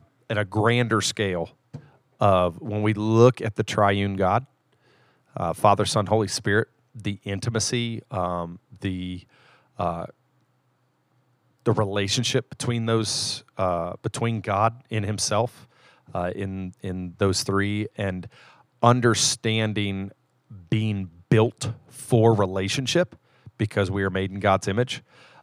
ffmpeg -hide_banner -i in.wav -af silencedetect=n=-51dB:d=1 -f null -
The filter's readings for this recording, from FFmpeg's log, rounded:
silence_start: 10.11
silence_end: 11.59 | silence_duration: 1.48